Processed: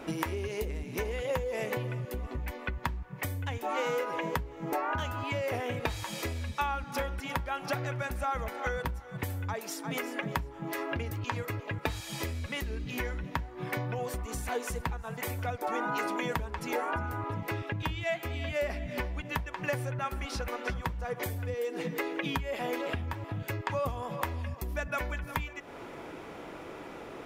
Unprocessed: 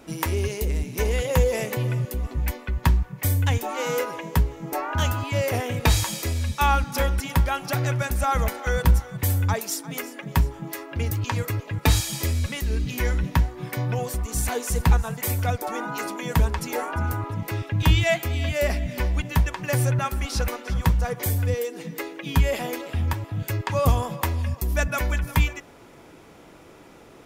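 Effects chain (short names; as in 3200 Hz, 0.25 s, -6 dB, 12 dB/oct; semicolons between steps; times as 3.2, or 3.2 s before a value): compressor 12:1, threshold -33 dBFS, peak gain reduction 21 dB; tone controls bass -6 dB, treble -10 dB; gain +6 dB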